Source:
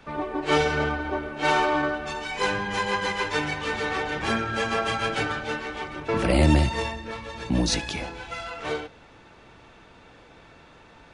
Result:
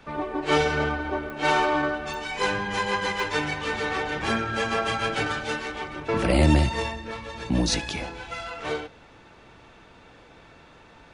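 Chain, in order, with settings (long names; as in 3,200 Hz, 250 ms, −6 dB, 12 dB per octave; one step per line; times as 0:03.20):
0:05.26–0:05.72: high-shelf EQ 5,000 Hz +9 dB
digital clicks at 0:01.30/0:02.14/0:03.20, −24 dBFS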